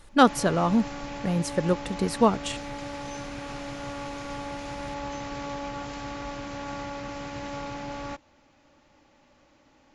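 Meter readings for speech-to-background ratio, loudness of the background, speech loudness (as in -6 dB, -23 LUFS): 11.5 dB, -36.5 LUFS, -25.0 LUFS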